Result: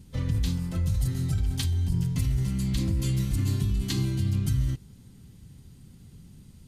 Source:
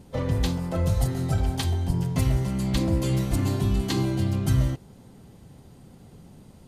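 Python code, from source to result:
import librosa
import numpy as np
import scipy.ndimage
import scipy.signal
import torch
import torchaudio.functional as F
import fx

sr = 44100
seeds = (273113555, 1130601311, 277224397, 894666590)

p1 = fx.tone_stack(x, sr, knobs='6-0-2')
p2 = fx.over_compress(p1, sr, threshold_db=-39.0, ratio=-0.5)
p3 = p1 + F.gain(torch.from_numpy(p2), -2.0).numpy()
y = F.gain(torch.from_numpy(p3), 8.5).numpy()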